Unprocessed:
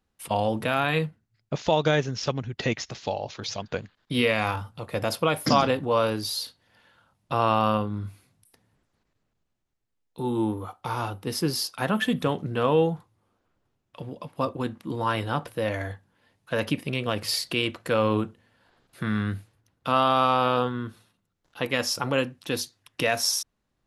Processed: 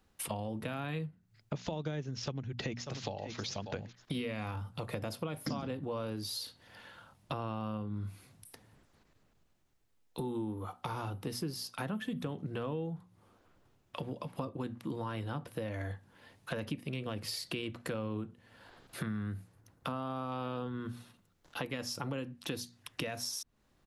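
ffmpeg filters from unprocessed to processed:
-filter_complex "[0:a]asplit=2[a][b];[b]afade=t=in:st=2.17:d=0.01,afade=t=out:st=3.33:d=0.01,aecho=0:1:590|1180:0.199526|0.0199526[c];[a][c]amix=inputs=2:normalize=0,asettb=1/sr,asplit=3[d][e][f];[d]atrim=end=19.064[g];[e]atrim=start=19.06:end=20.32,asetpts=PTS-STARTPTS,afade=t=in:d=0.004:c=qsin,afade=t=out:st=1.256:d=0.004:c=qsin,equalizer=f=3.2k:w=0.93:g=-6.5[h];[f]atrim=start=20.316[i];[g][h]acrossfade=d=0.004:c1=hsin:c2=qsin[j];[j][i]acrossfade=d=0.004:c1=qsin:c2=hsin,acrossover=split=340[k][l];[l]acompressor=threshold=-39dB:ratio=2[m];[k][m]amix=inputs=2:normalize=0,bandreject=f=60:t=h:w=6,bandreject=f=120:t=h:w=6,bandreject=f=180:t=h:w=6,bandreject=f=240:t=h:w=6,acompressor=threshold=-44dB:ratio=4,volume=6.5dB"

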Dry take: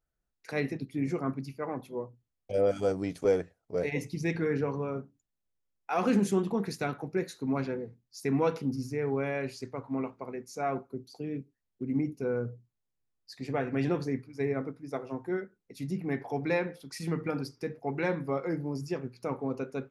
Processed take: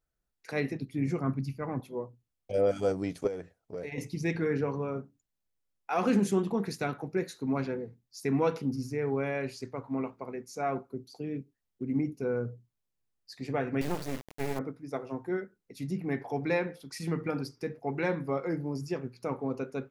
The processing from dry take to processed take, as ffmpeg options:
-filter_complex "[0:a]asettb=1/sr,asplit=3[a][b][c];[a]atrim=end=0.714[d];[b]atrim=start=0.71:end=1.8,asetpts=PTS-STARTPTS,afade=t=in:d=0.004:c=qsin,afade=t=out:st=1.086:d=0.004:c=qsin,asubboost=boost=9:cutoff=220[e];[c]atrim=start=1.796[f];[d][e]acrossfade=d=0.004:c1=hsin:c2=qsin[g];[g][f]acrossfade=d=0.004:c1=qsin:c2=hsin,asettb=1/sr,asplit=3[h][i][j];[h]atrim=end=3.274[k];[i]atrim=start=3.27:end=3.98,asetpts=PTS-STARTPTS,afade=t=in:d=0.004:c=qsin,afade=t=out:st=0.706:d=0.004:c=qsin,acompressor=threshold=-35dB:ratio=4:attack=3.2:release=140:knee=1:detection=peak[l];[j]atrim=start=3.976[m];[k][l]acrossfade=d=0.004:c1=hsin:c2=qsin[n];[n][m]acrossfade=d=0.004:c1=qsin:c2=hsin,asettb=1/sr,asplit=3[o][p][q];[o]atrim=end=13.814[r];[p]atrim=start=13.81:end=14.59,asetpts=PTS-STARTPTS,afade=t=in:d=0.004:c=qsin,afade=t=out:st=0.776:d=0.004:c=qsin,acrusher=bits=4:dc=4:mix=0:aa=0.000001[s];[q]atrim=start=14.586[t];[r][s]acrossfade=d=0.004:c1=hsin:c2=qsin[u];[u][t]acrossfade=d=0.004:c1=qsin:c2=hsin"

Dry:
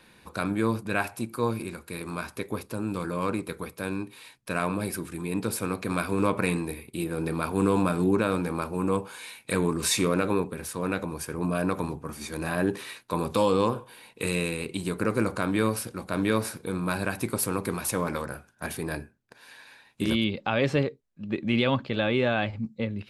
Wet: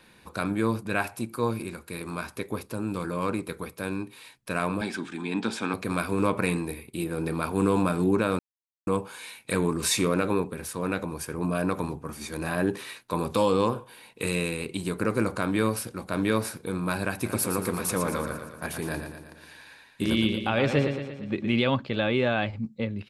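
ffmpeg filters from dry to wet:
-filter_complex "[0:a]asettb=1/sr,asplit=3[a][b][c];[a]atrim=end=4.814[d];[b]atrim=start=4.81:end=5.74,asetpts=PTS-STARTPTS,afade=t=in:d=0.004:c=qsin,afade=t=out:st=0.926:d=0.004:c=qsin,highpass=200,equalizer=f=240:t=q:w=4:g=8,equalizer=f=510:t=q:w=4:g=-6,equalizer=f=830:t=q:w=4:g=7,equalizer=f=1.6k:t=q:w=4:g=7,equalizer=f=2.4k:t=q:w=4:g=3,equalizer=f=3.4k:t=q:w=4:g=10,lowpass=f=7.3k:w=0.5412,lowpass=f=7.3k:w=1.3066[e];[c]atrim=start=5.736[f];[d][e]acrossfade=d=0.004:c1=hsin:c2=qsin[g];[g][f]acrossfade=d=0.004:c1=qsin:c2=hsin,asplit=3[h][i][j];[h]afade=t=out:st=17.24:d=0.02[k];[i]aecho=1:1:116|232|348|464|580|696|812:0.422|0.232|0.128|0.0702|0.0386|0.0212|0.0117,afade=t=in:st=17.24:d=0.02,afade=t=out:st=21.53:d=0.02[l];[j]afade=t=in:st=21.53:d=0.02[m];[k][l][m]amix=inputs=3:normalize=0,asplit=3[n][o][p];[n]atrim=end=8.39,asetpts=PTS-STARTPTS,afade=t=out:st=8.386:d=0.004:c=hsin[q];[o]atrim=start=8.39:end=8.87,asetpts=PTS-STARTPTS,volume=0[r];[p]atrim=start=8.87,asetpts=PTS-STARTPTS,afade=t=in:d=0.004:c=hsin[s];[q][r][s]concat=n=3:v=0:a=1"

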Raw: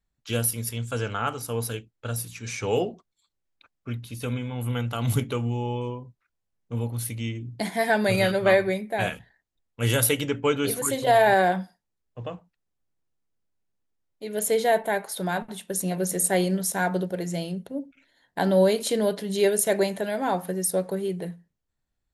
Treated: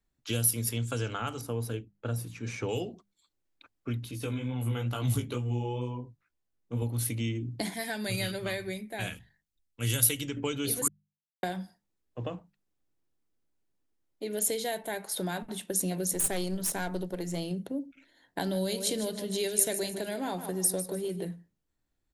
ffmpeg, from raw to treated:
-filter_complex "[0:a]asettb=1/sr,asplit=3[a][b][c];[a]atrim=end=1.414[d];[b]atrim=start=1.41:end=2.69,asetpts=PTS-STARTPTS,afade=t=in:d=0.004:c=qsin,afade=t=out:st=1.276:d=0.004:c=qsin,highshelf=f=2.4k:g=-11.5[e];[c]atrim=start=2.686[f];[d][e]acrossfade=d=0.004:c1=hsin:c2=qsin[g];[g][f]acrossfade=d=0.004:c1=qsin:c2=hsin,asettb=1/sr,asplit=3[h][i][j];[h]atrim=end=4.114[k];[i]atrim=start=4.11:end=6.82,asetpts=PTS-STARTPTS,afade=t=in:d=0.004:c=qsin,afade=t=out:st=2.706:d=0.004:c=qsin,flanger=delay=15:depth=4:speed=2.2[l];[j]atrim=start=6.816[m];[k][l]acrossfade=d=0.004:c1=hsin:c2=qsin[n];[n][m]acrossfade=d=0.004:c1=qsin:c2=hsin,asettb=1/sr,asplit=3[o][p][q];[o]atrim=end=7.744[r];[p]atrim=start=7.74:end=10.37,asetpts=PTS-STARTPTS,afade=t=in:d=0.004:c=qsin,afade=t=out:st=2.626:d=0.004:c=qsin,equalizer=f=580:w=0.31:g=-12.5[s];[q]atrim=start=10.366[t];[r][s]acrossfade=d=0.004:c1=hsin:c2=qsin[u];[u][t]acrossfade=d=0.004:c1=qsin:c2=hsin,asettb=1/sr,asplit=3[v][w][x];[v]atrim=end=16.134[y];[w]atrim=start=16.13:end=17.51,asetpts=PTS-STARTPTS,afade=t=in:d=0.004:c=qsin,afade=t=out:st=1.376:d=0.004:c=qsin,aeval=exprs='(tanh(8.91*val(0)+0.6)-tanh(0.6))/8.91':c=same[z];[x]atrim=start=17.506[aa];[y][z]acrossfade=d=0.004:c1=hsin:c2=qsin[ab];[ab][aa]acrossfade=d=0.004:c1=qsin:c2=hsin,asplit=3[ac][ad][ae];[ac]afade=t=out:st=18.49:d=0.02[af];[ad]aecho=1:1:152|304|456:0.251|0.0829|0.0274,afade=t=in:st=18.49:d=0.02,afade=t=out:st=21.23:d=0.02[ag];[ae]afade=t=in:st=21.23:d=0.02[ah];[af][ag][ah]amix=inputs=3:normalize=0,asplit=3[ai][aj][ak];[ai]atrim=end=10.88,asetpts=PTS-STARTPTS,afade=t=out:st=10.876:d=0.004:c=hsin[al];[aj]atrim=start=10.88:end=11.43,asetpts=PTS-STARTPTS,volume=0[am];[ak]atrim=start=11.43,asetpts=PTS-STARTPTS,afade=t=in:d=0.004:c=hsin[an];[al][am][an]concat=n=3:v=0:a=1,equalizer=f=310:w=2.1:g=6.5,bandreject=f=50:t=h:w=6,bandreject=f=100:t=h:w=6,bandreject=f=150:t=h:w=6,bandreject=f=200:t=h:w=6,acrossover=split=130|3000[ao][ap][aq];[ap]acompressor=threshold=-32dB:ratio=6[ar];[ao][ar][aq]amix=inputs=3:normalize=0"

